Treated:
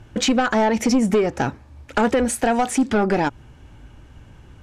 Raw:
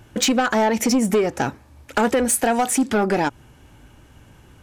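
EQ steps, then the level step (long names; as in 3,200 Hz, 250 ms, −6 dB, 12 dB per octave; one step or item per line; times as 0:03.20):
high-frequency loss of the air 53 metres
low-shelf EQ 97 Hz +8 dB
0.0 dB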